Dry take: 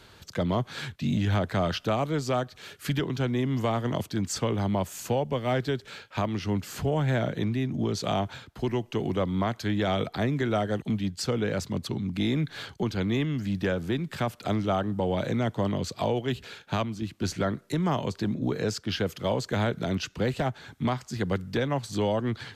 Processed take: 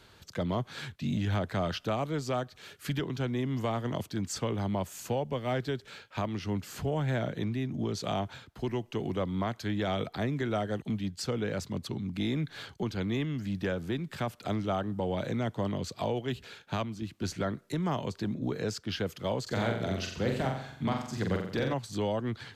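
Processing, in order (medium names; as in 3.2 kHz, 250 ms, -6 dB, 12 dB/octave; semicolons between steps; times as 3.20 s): 19.42–21.74 s: flutter echo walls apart 7.6 m, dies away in 0.64 s; trim -4.5 dB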